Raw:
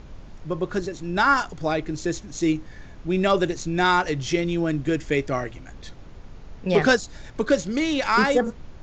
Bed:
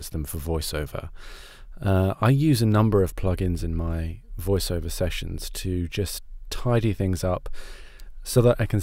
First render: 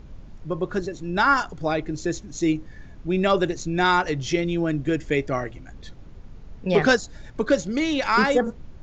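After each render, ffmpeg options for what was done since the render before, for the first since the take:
ffmpeg -i in.wav -af "afftdn=noise_reduction=6:noise_floor=-43" out.wav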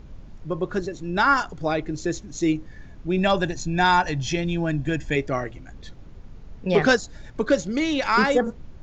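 ffmpeg -i in.wav -filter_complex "[0:a]asettb=1/sr,asplit=3[link_01][link_02][link_03];[link_01]atrim=end=3.184[link_04];[link_02]atrim=start=3.18:end=5.16,asetpts=PTS-STARTPTS,afade=type=in:duration=0.004:curve=qsin,afade=type=out:start_time=1.976:duration=0.004:curve=qsin,aecho=1:1:1.2:0.53,atrim=end_sample=87318[link_05];[link_03]atrim=start=5.156[link_06];[link_04][link_05]acrossfade=duration=0.004:curve1=hsin:curve2=qsin[link_07];[link_07][link_06]acrossfade=duration=0.004:curve1=qsin:curve2=hsin" out.wav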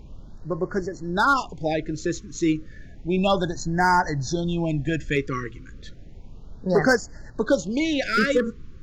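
ffmpeg -i in.wav -af "volume=11.5dB,asoftclip=hard,volume=-11.5dB,afftfilt=real='re*(1-between(b*sr/1024,710*pow(3100/710,0.5+0.5*sin(2*PI*0.32*pts/sr))/1.41,710*pow(3100/710,0.5+0.5*sin(2*PI*0.32*pts/sr))*1.41))':imag='im*(1-between(b*sr/1024,710*pow(3100/710,0.5+0.5*sin(2*PI*0.32*pts/sr))/1.41,710*pow(3100/710,0.5+0.5*sin(2*PI*0.32*pts/sr))*1.41))':win_size=1024:overlap=0.75" out.wav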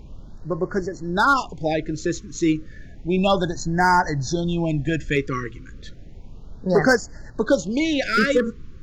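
ffmpeg -i in.wav -af "volume=2dB" out.wav

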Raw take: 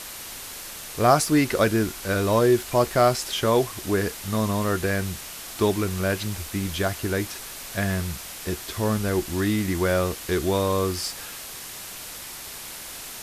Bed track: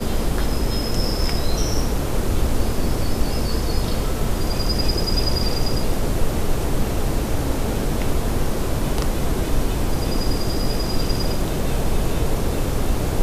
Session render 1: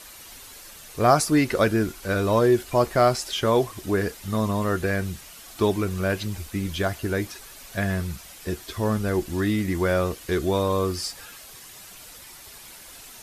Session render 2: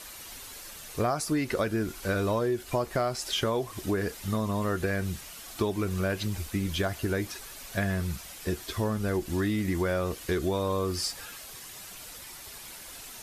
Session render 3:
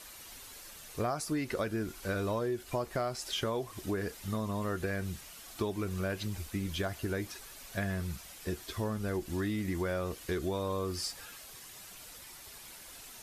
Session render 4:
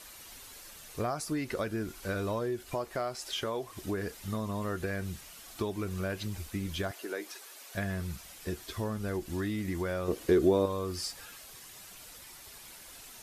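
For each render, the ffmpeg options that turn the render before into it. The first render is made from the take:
ffmpeg -i in.wav -af "afftdn=noise_reduction=9:noise_floor=-38" out.wav
ffmpeg -i in.wav -af "acompressor=threshold=-24dB:ratio=10" out.wav
ffmpeg -i in.wav -af "volume=-5.5dB" out.wav
ffmpeg -i in.wav -filter_complex "[0:a]asettb=1/sr,asplit=3[link_01][link_02][link_03];[link_01]atrim=end=2.744[link_04];[link_02]atrim=start=2.74:end=3.77,asetpts=PTS-STARTPTS,afade=type=in:duration=0.004:curve=qsin,afade=type=out:start_time=1.026:duration=0.004:curve=qsin,bass=frequency=250:gain=-6,treble=frequency=4000:gain=-1[link_05];[link_03]atrim=start=3.766[link_06];[link_04][link_05]acrossfade=duration=0.004:curve1=hsin:curve2=qsin[link_07];[link_07][link_06]acrossfade=duration=0.004:curve1=qsin:curve2=hsin,asettb=1/sr,asplit=3[link_08][link_09][link_10];[link_08]atrim=end=6.914[link_11];[link_09]atrim=start=6.91:end=7.75,asetpts=PTS-STARTPTS,afade=type=in:duration=0.004:curve=qsin,afade=type=out:start_time=0.836:duration=0.004:curve=qsin,highpass=frequency=320:width=0.5412,highpass=frequency=320:width=1.3066[link_12];[link_10]atrim=start=7.746[link_13];[link_11][link_12]acrossfade=duration=0.004:curve1=hsin:curve2=qsin[link_14];[link_14][link_13]acrossfade=duration=0.004:curve1=qsin:curve2=hsin,asettb=1/sr,asplit=3[link_15][link_16][link_17];[link_15]atrim=end=10.084[link_18];[link_16]atrim=start=10.08:end=10.66,asetpts=PTS-STARTPTS,afade=type=in:duration=0.004:curve=qsin,afade=type=out:start_time=0.576:duration=0.004:curve=qsin,equalizer=frequency=360:width_type=o:width=2.1:gain=11.5[link_19];[link_17]atrim=start=10.656[link_20];[link_18][link_19]acrossfade=duration=0.004:curve1=hsin:curve2=qsin[link_21];[link_21][link_20]acrossfade=duration=0.004:curve1=qsin:curve2=hsin" out.wav

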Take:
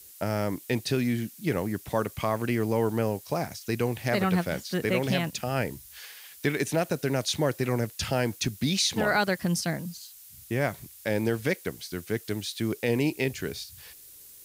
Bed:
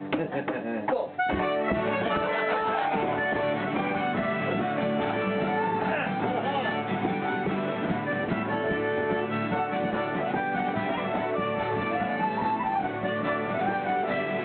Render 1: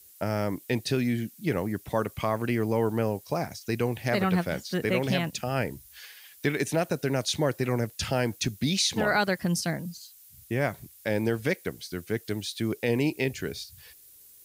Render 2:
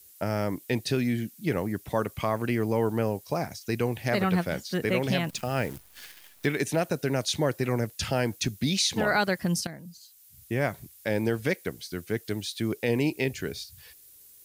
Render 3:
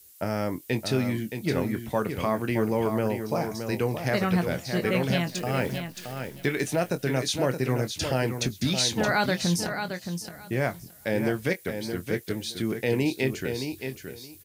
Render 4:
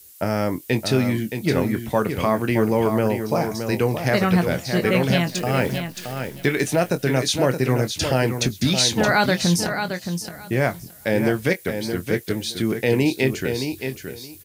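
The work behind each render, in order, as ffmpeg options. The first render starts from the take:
ffmpeg -i in.wav -af "afftdn=noise_reduction=6:noise_floor=-50" out.wav
ffmpeg -i in.wav -filter_complex "[0:a]asettb=1/sr,asplit=3[link_01][link_02][link_03];[link_01]atrim=end=5.294[link_04];[link_02]atrim=start=5.29:end=6.46,asetpts=PTS-STARTPTS,afade=type=in:duration=0.004:curve=qsin,afade=type=out:start_time=1.166:duration=0.004:curve=qsin,acrusher=bits=8:dc=4:mix=0:aa=0.000001[link_05];[link_03]atrim=start=6.456[link_06];[link_04][link_05]acrossfade=duration=0.004:curve1=hsin:curve2=qsin[link_07];[link_07][link_06]acrossfade=duration=0.004:curve1=qsin:curve2=hsin,asplit=2[link_08][link_09];[link_08]atrim=end=9.67,asetpts=PTS-STARTPTS,afade=type=out:start_time=9.666:duration=0.004:curve=hsin:silence=0.223872[link_10];[link_09]atrim=start=9.67,asetpts=PTS-STARTPTS,afade=type=in:duration=0.85:silence=0.223872[link_11];[link_10][link_11]concat=n=2:v=0:a=1" out.wav
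ffmpeg -i in.wav -filter_complex "[0:a]asplit=2[link_01][link_02];[link_02]adelay=23,volume=-10.5dB[link_03];[link_01][link_03]amix=inputs=2:normalize=0,aecho=1:1:621|1242|1863:0.422|0.0717|0.0122" out.wav
ffmpeg -i in.wav -af "volume=6dB" out.wav

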